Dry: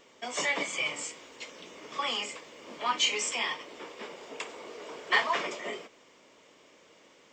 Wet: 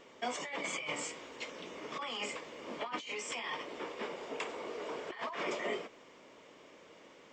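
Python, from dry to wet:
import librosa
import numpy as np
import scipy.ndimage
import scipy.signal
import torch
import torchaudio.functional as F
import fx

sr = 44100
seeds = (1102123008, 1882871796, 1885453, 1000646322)

y = fx.over_compress(x, sr, threshold_db=-36.0, ratio=-1.0)
y = fx.high_shelf(y, sr, hz=3600.0, db=-9.0)
y = F.gain(torch.from_numpy(y), -1.0).numpy()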